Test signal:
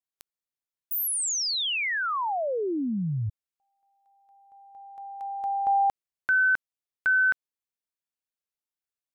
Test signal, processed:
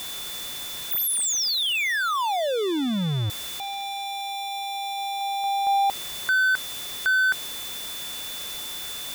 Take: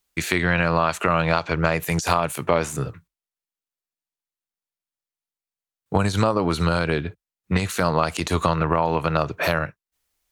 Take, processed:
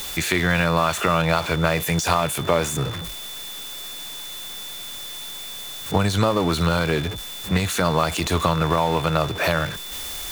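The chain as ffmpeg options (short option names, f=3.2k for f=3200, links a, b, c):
-af "aeval=exprs='val(0)+0.5*0.0531*sgn(val(0))':c=same,aeval=exprs='val(0)+0.02*sin(2*PI*3500*n/s)':c=same,volume=-1dB"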